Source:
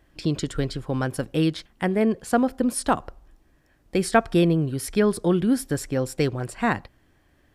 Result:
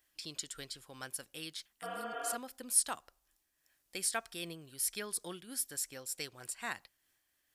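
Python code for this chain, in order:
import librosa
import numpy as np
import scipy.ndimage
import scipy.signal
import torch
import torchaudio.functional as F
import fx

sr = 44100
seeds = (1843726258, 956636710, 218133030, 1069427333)

y = scipy.signal.lfilter([1.0, -0.97], [1.0], x)
y = fx.spec_repair(y, sr, seeds[0], start_s=1.85, length_s=0.48, low_hz=270.0, high_hz=3600.0, source='after')
y = fx.am_noise(y, sr, seeds[1], hz=5.7, depth_pct=60)
y = F.gain(torch.from_numpy(y), 1.5).numpy()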